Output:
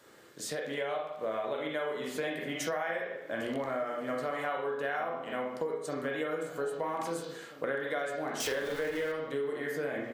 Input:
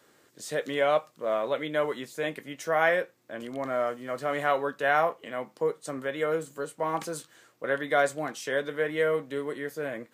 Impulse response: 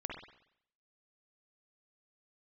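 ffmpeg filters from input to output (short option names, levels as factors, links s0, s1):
-filter_complex "[0:a]asettb=1/sr,asplit=3[s0][s1][s2];[s0]atrim=end=8.404[s3];[s1]atrim=start=8.4:end=9.12,asetpts=PTS-STARTPTS,afade=t=in:d=0.004:c=qsin,afade=t=out:st=0.716:d=0.004:c=qsin,aeval=exprs='val(0)+0.5*0.0316*sgn(val(0))':c=same[s4];[s2]atrim=start=9.116[s5];[s3][s4]acrossfade=d=0.004:c1=hsin:c2=qsin[s6];[s6][s5]acrossfade=d=0.004:c1=qsin:c2=hsin[s7];[1:a]atrim=start_sample=2205,asetrate=57330,aresample=44100[s8];[s7][s8]afir=irnorm=-1:irlink=0,acompressor=threshold=0.00794:ratio=10,asplit=2[s9][s10];[s10]adelay=1633,volume=0.158,highshelf=f=4000:g=-36.7[s11];[s9][s11]amix=inputs=2:normalize=0,dynaudnorm=f=130:g=11:m=1.58,volume=2.24"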